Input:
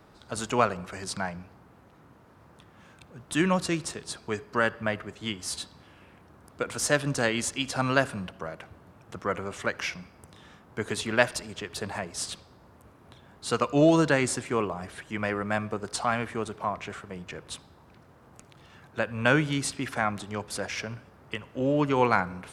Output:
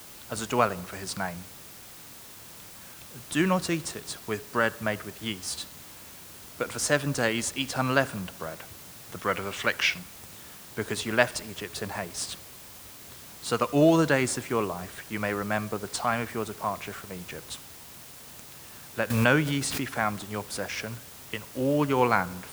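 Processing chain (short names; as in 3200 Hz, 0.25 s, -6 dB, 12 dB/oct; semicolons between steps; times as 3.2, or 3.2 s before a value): 9.16–9.99 bell 3100 Hz +10.5 dB 1.5 oct; added noise white -47 dBFS; 19.1–19.87 backwards sustainer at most 41 dB/s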